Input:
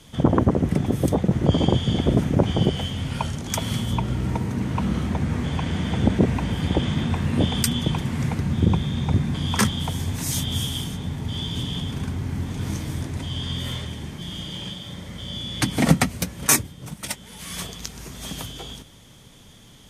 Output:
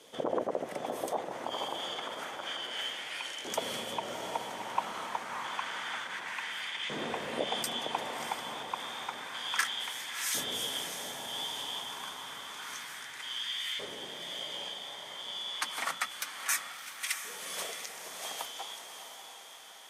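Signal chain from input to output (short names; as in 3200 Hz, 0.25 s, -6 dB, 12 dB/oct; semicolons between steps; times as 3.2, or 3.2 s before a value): limiter -14 dBFS, peak gain reduction 11 dB; LFO high-pass saw up 0.29 Hz 450–2200 Hz; on a send: diffused feedback echo 0.668 s, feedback 54%, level -8 dB; on the sum: gain -5.5 dB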